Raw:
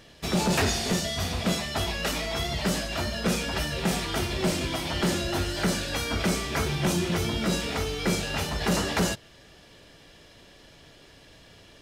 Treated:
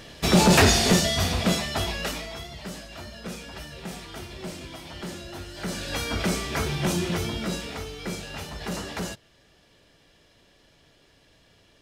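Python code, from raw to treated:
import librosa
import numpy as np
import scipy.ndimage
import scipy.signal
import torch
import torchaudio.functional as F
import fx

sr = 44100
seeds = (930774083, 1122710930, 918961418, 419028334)

y = fx.gain(x, sr, db=fx.line((0.86, 7.5), (2.02, -0.5), (2.5, -10.5), (5.5, -10.5), (5.93, 0.0), (7.09, 0.0), (7.92, -7.0)))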